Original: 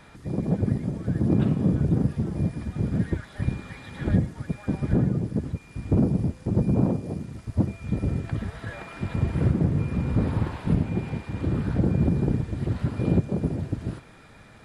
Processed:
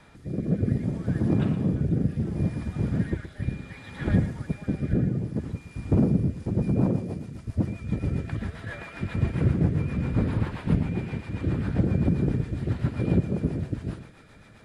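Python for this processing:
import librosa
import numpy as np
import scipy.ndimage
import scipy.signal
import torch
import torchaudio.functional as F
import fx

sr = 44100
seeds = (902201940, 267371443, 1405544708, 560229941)

p1 = fx.dynamic_eq(x, sr, hz=2000.0, q=0.83, threshold_db=-46.0, ratio=4.0, max_db=4)
p2 = fx.rotary_switch(p1, sr, hz=0.65, then_hz=7.5, switch_at_s=6.02)
y = p2 + fx.echo_single(p2, sr, ms=119, db=-12.5, dry=0)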